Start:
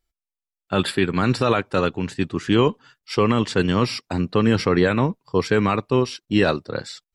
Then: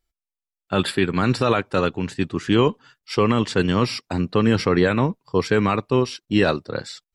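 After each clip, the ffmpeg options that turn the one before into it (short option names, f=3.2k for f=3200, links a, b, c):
-af anull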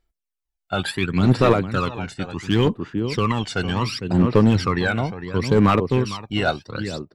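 -filter_complex "[0:a]asplit=2[a][b];[b]adelay=454.8,volume=-10dB,highshelf=f=4k:g=-10.2[c];[a][c]amix=inputs=2:normalize=0,aphaser=in_gain=1:out_gain=1:delay=1.4:decay=0.67:speed=0.7:type=sinusoidal,aeval=exprs='clip(val(0),-1,0.398)':c=same,volume=-3.5dB"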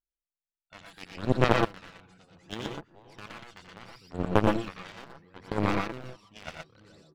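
-filter_complex "[0:a]aeval=exprs='0.708*(cos(1*acos(clip(val(0)/0.708,-1,1)))-cos(1*PI/2))+0.251*(cos(3*acos(clip(val(0)/0.708,-1,1)))-cos(3*PI/2))':c=same,asplit=2[a][b];[b]aecho=0:1:85|117|123:0.422|0.596|0.531[c];[a][c]amix=inputs=2:normalize=0,volume=-3dB"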